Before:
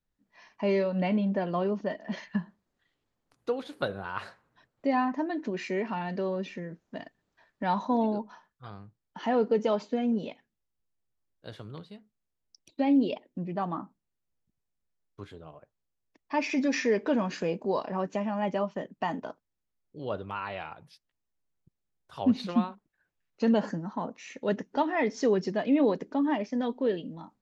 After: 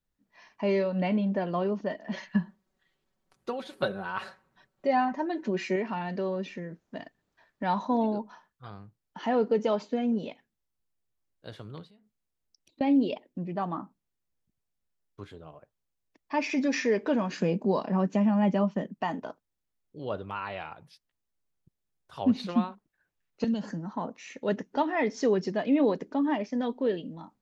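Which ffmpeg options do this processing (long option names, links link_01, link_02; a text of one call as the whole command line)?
ffmpeg -i in.wav -filter_complex "[0:a]asettb=1/sr,asplit=3[link_01][link_02][link_03];[link_01]atrim=end=2.144[link_04];[link_02]atrim=start=2.14:end=5.76,asetpts=PTS-STARTPTS,afade=type=in:duration=0.004:curve=qsin,afade=type=out:start_time=3.616:duration=0.004:curve=qsin,aecho=1:1:5.3:0.65,atrim=end_sample=159642[link_05];[link_03]atrim=start=5.756[link_06];[link_04][link_05]acrossfade=duration=0.004:curve1=hsin:curve2=qsin[link_07];[link_07][link_06]acrossfade=duration=0.004:curve1=qsin:curve2=hsin,asettb=1/sr,asplit=3[link_08][link_09][link_10];[link_08]atrim=end=11.874[link_11];[link_09]atrim=start=11.87:end=12.81,asetpts=PTS-STARTPTS,afade=type=in:duration=0.004:curve=qsin,afade=type=out:start_time=0.936:duration=0.004:curve=qsin,acompressor=threshold=-59dB:ratio=4:attack=3.2:release=140:knee=1:detection=peak[link_12];[link_10]atrim=start=12.806[link_13];[link_11][link_12]acrossfade=duration=0.004:curve1=hsin:curve2=qsin[link_14];[link_14][link_13]acrossfade=duration=0.004:curve1=qsin:curve2=hsin,asettb=1/sr,asplit=3[link_15][link_16][link_17];[link_15]atrim=end=17.394[link_18];[link_16]atrim=start=17.39:end=18.99,asetpts=PTS-STARTPTS,afade=type=in:duration=0.004:curve=qsin,afade=type=out:start_time=1.596:duration=0.004:curve=qsin,equalizer=frequency=200:width=1.5:gain=9.5[link_19];[link_17]atrim=start=18.986[link_20];[link_18][link_19]acrossfade=duration=0.004:curve1=hsin:curve2=qsin[link_21];[link_21][link_20]acrossfade=duration=0.004:curve1=qsin:curve2=hsin,asettb=1/sr,asplit=3[link_22][link_23][link_24];[link_22]atrim=end=23.444[link_25];[link_23]atrim=start=23.44:end=23.95,asetpts=PTS-STARTPTS,afade=type=in:duration=0.004:curve=qsin,afade=type=out:start_time=0.506:duration=0.004:curve=qsin,acrossover=split=240|3000[link_26][link_27][link_28];[link_27]acompressor=threshold=-39dB:ratio=6:attack=3.2:release=140:knee=2.83:detection=peak[link_29];[link_26][link_29][link_28]amix=inputs=3:normalize=0[link_30];[link_24]atrim=start=23.946[link_31];[link_25][link_30]acrossfade=duration=0.004:curve1=hsin:curve2=qsin[link_32];[link_32][link_31]acrossfade=duration=0.004:curve1=qsin:curve2=hsin" out.wav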